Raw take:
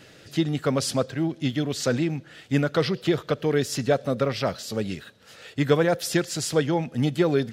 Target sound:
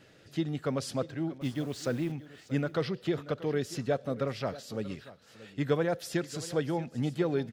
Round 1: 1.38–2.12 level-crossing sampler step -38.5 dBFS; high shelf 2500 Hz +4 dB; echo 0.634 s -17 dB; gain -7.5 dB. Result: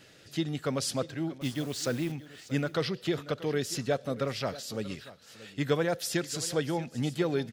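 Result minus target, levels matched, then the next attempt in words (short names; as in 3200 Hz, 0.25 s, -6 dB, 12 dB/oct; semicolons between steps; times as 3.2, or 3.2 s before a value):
4000 Hz band +5.5 dB
1.38–2.12 level-crossing sampler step -38.5 dBFS; high shelf 2500 Hz -5 dB; echo 0.634 s -17 dB; gain -7.5 dB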